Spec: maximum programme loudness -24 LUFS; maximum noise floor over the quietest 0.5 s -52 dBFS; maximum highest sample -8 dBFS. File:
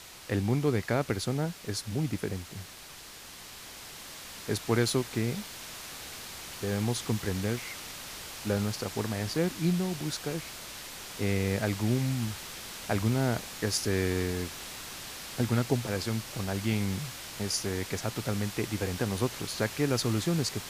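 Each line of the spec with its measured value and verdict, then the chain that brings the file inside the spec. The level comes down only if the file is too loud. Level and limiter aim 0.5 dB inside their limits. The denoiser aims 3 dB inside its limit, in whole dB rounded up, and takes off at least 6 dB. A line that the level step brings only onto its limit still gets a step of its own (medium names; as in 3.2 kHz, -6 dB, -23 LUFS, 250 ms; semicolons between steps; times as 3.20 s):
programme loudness -31.5 LUFS: pass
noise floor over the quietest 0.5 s -47 dBFS: fail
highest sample -11.5 dBFS: pass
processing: noise reduction 8 dB, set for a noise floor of -47 dBFS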